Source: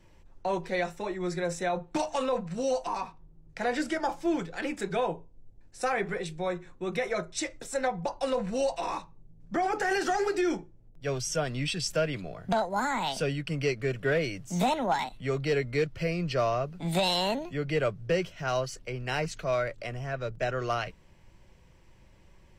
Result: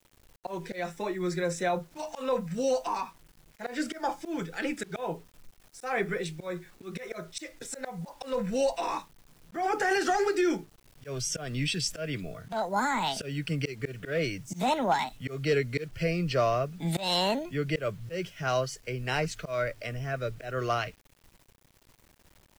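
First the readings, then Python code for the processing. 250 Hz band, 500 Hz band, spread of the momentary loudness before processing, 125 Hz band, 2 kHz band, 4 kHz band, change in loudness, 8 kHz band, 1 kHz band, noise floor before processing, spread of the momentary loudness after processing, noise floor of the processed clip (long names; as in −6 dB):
−0.5 dB, −1.5 dB, 7 LU, 0.0 dB, −0.5 dB, +0.5 dB, −0.5 dB, +0.5 dB, −0.5 dB, −57 dBFS, 13 LU, −63 dBFS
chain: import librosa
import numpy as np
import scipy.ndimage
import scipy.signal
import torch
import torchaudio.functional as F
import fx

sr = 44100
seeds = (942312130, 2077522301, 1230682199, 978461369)

y = fx.dmg_noise_colour(x, sr, seeds[0], colour='pink', level_db=-62.0)
y = fx.noise_reduce_blind(y, sr, reduce_db=9)
y = fx.auto_swell(y, sr, attack_ms=171.0)
y = fx.quant_dither(y, sr, seeds[1], bits=10, dither='none')
y = y * librosa.db_to_amplitude(1.5)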